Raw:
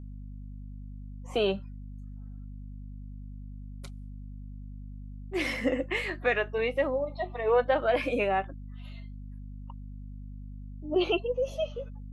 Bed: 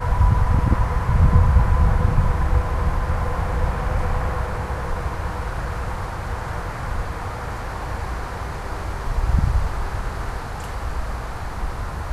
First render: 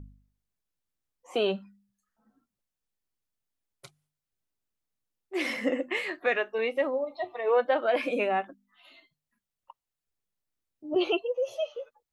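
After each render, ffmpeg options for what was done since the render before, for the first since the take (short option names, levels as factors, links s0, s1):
-af "bandreject=f=50:t=h:w=4,bandreject=f=100:t=h:w=4,bandreject=f=150:t=h:w=4,bandreject=f=200:t=h:w=4,bandreject=f=250:t=h:w=4"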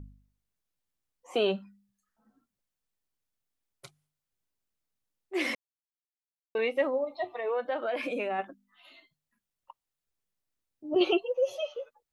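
-filter_complex "[0:a]asplit=3[s0][s1][s2];[s0]afade=t=out:st=7.27:d=0.02[s3];[s1]acompressor=threshold=0.0316:ratio=2.5:attack=3.2:release=140:knee=1:detection=peak,afade=t=in:st=7.27:d=0.02,afade=t=out:st=8.38:d=0.02[s4];[s2]afade=t=in:st=8.38:d=0.02[s5];[s3][s4][s5]amix=inputs=3:normalize=0,asettb=1/sr,asplit=3[s6][s7][s8];[s6]atrim=end=11.004[s9];[s7]atrim=start=11:end=11.74,asetpts=PTS-STARTPTS,afade=t=in:d=0.004:c=qsin,afade=t=out:st=0.736:d=0.004:c=qsin,aecho=1:1:5.4:0.65,atrim=end_sample=32634[s10];[s8]atrim=start=11.736[s11];[s9][s10]acrossfade=d=0.004:c1=hsin:c2=qsin[s12];[s12][s11]acrossfade=d=0.004:c1=qsin:c2=hsin,asplit=3[s13][s14][s15];[s13]atrim=end=5.55,asetpts=PTS-STARTPTS,afade=t=out:st=5.546:d=0.004:c=hsin[s16];[s14]atrim=start=5.55:end=6.55,asetpts=PTS-STARTPTS,volume=0[s17];[s15]atrim=start=6.55,asetpts=PTS-STARTPTS,afade=t=in:d=0.004:c=hsin[s18];[s16][s17][s18]concat=n=3:v=0:a=1"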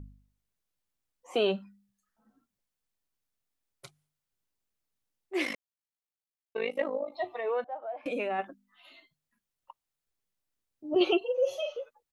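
-filter_complex "[0:a]asplit=3[s0][s1][s2];[s0]afade=t=out:st=5.44:d=0.02[s3];[s1]tremolo=f=52:d=0.824,afade=t=in:st=5.44:d=0.02,afade=t=out:st=7.12:d=0.02[s4];[s2]afade=t=in:st=7.12:d=0.02[s5];[s3][s4][s5]amix=inputs=3:normalize=0,asettb=1/sr,asplit=3[s6][s7][s8];[s6]atrim=end=7.644[s9];[s7]atrim=start=7.64:end=8.06,asetpts=PTS-STARTPTS,afade=t=in:d=0.004:c=qsin,afade=t=out:st=0.416:d=0.004:c=qsin,bandpass=f=760:t=q:w=5.1[s10];[s8]atrim=start=8.056[s11];[s9][s10]acrossfade=d=0.004:c1=hsin:c2=qsin[s12];[s12][s11]acrossfade=d=0.004:c1=qsin:c2=hsin,asplit=3[s13][s14][s15];[s13]afade=t=out:st=11.21:d=0.02[s16];[s14]asplit=2[s17][s18];[s18]adelay=42,volume=0.447[s19];[s17][s19]amix=inputs=2:normalize=0,afade=t=in:st=11.21:d=0.02,afade=t=out:st=11.79:d=0.02[s20];[s15]afade=t=in:st=11.79:d=0.02[s21];[s16][s20][s21]amix=inputs=3:normalize=0"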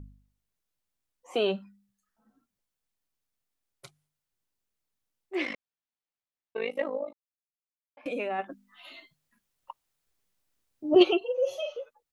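-filter_complex "[0:a]asettb=1/sr,asplit=3[s0][s1][s2];[s0]atrim=end=5.354[s3];[s1]atrim=start=5.35:end=6.62,asetpts=PTS-STARTPTS,afade=t=in:d=0.004:c=qsin,afade=t=out:st=1.266:d=0.004:c=qsin,lowpass=4000[s4];[s2]atrim=start=6.616[s5];[s3][s4]acrossfade=d=0.004:c1=hsin:c2=qsin[s6];[s6][s5]acrossfade=d=0.004:c1=qsin:c2=hsin,asplit=3[s7][s8][s9];[s7]afade=t=out:st=8.49:d=0.02[s10];[s8]acontrast=90,afade=t=in:st=8.49:d=0.02,afade=t=out:st=11.02:d=0.02[s11];[s9]afade=t=in:st=11.02:d=0.02[s12];[s10][s11][s12]amix=inputs=3:normalize=0,asplit=3[s13][s14][s15];[s13]atrim=end=7.13,asetpts=PTS-STARTPTS,afade=t=out:st=7.126:d=0.004:c=hsin[s16];[s14]atrim=start=7.13:end=7.97,asetpts=PTS-STARTPTS,volume=0[s17];[s15]atrim=start=7.97,asetpts=PTS-STARTPTS,afade=t=in:d=0.004:c=hsin[s18];[s16][s17][s18]concat=n=3:v=0:a=1"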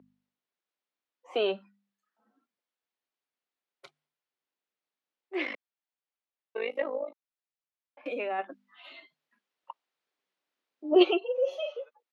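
-filter_complex "[0:a]highpass=120,acrossover=split=250 4500:gain=0.0708 1 0.126[s0][s1][s2];[s0][s1][s2]amix=inputs=3:normalize=0"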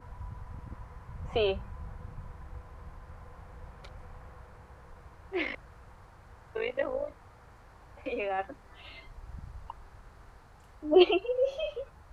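-filter_complex "[1:a]volume=0.0501[s0];[0:a][s0]amix=inputs=2:normalize=0"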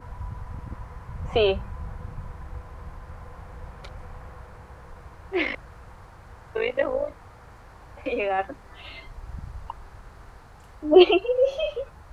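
-af "volume=2.24,alimiter=limit=0.708:level=0:latency=1"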